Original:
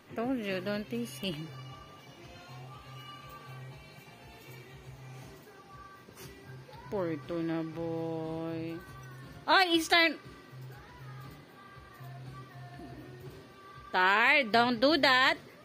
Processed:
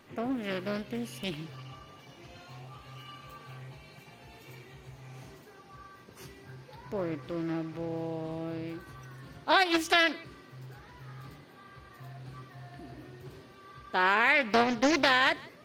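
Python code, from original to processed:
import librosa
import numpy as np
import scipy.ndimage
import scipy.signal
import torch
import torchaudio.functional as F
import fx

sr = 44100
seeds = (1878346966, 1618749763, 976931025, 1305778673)

y = x + 10.0 ** (-23.0 / 20.0) * np.pad(x, (int(161 * sr / 1000.0), 0))[:len(x)]
y = fx.doppler_dist(y, sr, depth_ms=0.39)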